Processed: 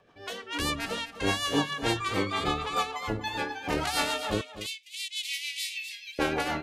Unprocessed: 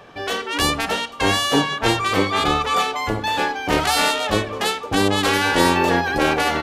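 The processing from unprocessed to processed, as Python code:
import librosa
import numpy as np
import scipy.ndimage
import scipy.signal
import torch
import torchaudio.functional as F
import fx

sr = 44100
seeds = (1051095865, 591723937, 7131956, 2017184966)

p1 = fx.steep_highpass(x, sr, hz=2100.0, slope=72, at=(4.41, 6.19))
p2 = fx.noise_reduce_blind(p1, sr, reduce_db=8)
p3 = fx.rotary(p2, sr, hz=6.7)
p4 = p3 + fx.echo_single(p3, sr, ms=252, db=-13.0, dry=0)
y = p4 * 10.0 ** (-7.0 / 20.0)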